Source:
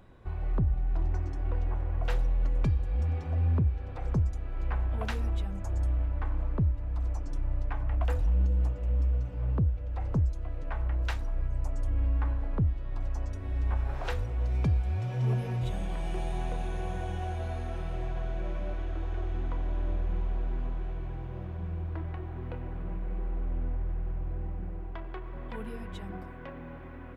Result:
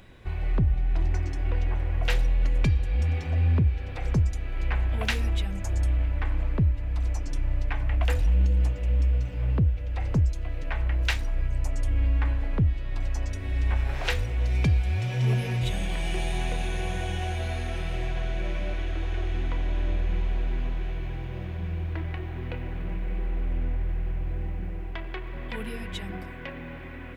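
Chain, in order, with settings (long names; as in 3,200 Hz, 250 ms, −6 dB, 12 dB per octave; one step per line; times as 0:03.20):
high shelf with overshoot 1,600 Hz +7.5 dB, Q 1.5
level +4 dB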